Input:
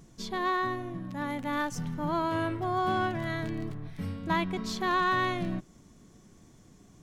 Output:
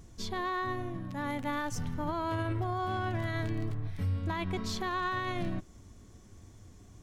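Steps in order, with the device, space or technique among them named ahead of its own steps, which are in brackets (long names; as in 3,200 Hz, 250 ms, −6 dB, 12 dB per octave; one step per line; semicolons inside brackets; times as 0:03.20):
car stereo with a boomy subwoofer (low shelf with overshoot 120 Hz +6 dB, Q 3; brickwall limiter −24.5 dBFS, peak gain reduction 9 dB)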